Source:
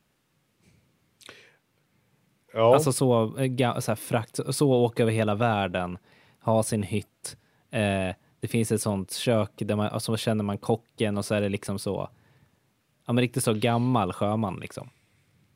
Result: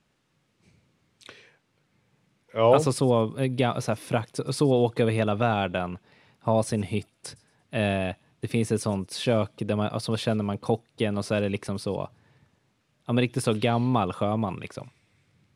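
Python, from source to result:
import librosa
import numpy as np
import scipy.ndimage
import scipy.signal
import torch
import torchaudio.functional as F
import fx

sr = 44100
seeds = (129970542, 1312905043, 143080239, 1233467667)

p1 = scipy.signal.sosfilt(scipy.signal.butter(2, 8000.0, 'lowpass', fs=sr, output='sos'), x)
y = p1 + fx.echo_wet_highpass(p1, sr, ms=115, feedback_pct=34, hz=4800.0, wet_db=-21.0, dry=0)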